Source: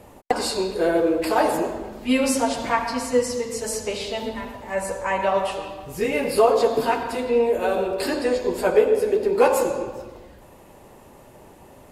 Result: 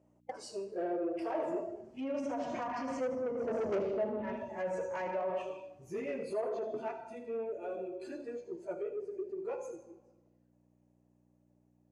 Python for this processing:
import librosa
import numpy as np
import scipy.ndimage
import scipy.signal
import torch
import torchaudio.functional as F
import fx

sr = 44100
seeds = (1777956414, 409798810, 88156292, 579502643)

p1 = fx.doppler_pass(x, sr, speed_mps=14, closest_m=1.9, pass_at_s=3.67)
p2 = fx.noise_reduce_blind(p1, sr, reduce_db=11)
p3 = fx.env_lowpass_down(p2, sr, base_hz=1000.0, full_db=-34.5)
p4 = fx.low_shelf(p3, sr, hz=380.0, db=5.0)
p5 = fx.over_compress(p4, sr, threshold_db=-43.0, ratio=-0.5)
p6 = p4 + (p5 * 10.0 ** (-2.0 / 20.0))
p7 = 10.0 ** (-33.0 / 20.0) * np.tanh(p6 / 10.0 ** (-33.0 / 20.0))
p8 = fx.add_hum(p7, sr, base_hz=60, snr_db=22)
p9 = fx.cabinet(p8, sr, low_hz=150.0, low_slope=12, high_hz=9700.0, hz=(350.0, 620.0, 3700.0, 6200.0), db=(6, 9, -9, 7))
y = p9 + fx.echo_wet_highpass(p9, sr, ms=78, feedback_pct=34, hz=3800.0, wet_db=-10, dry=0)